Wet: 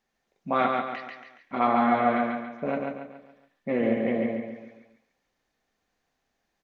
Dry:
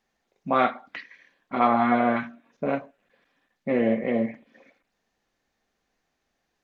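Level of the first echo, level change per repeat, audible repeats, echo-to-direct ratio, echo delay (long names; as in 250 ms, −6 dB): −3.5 dB, −7.5 dB, 5, −2.5 dB, 140 ms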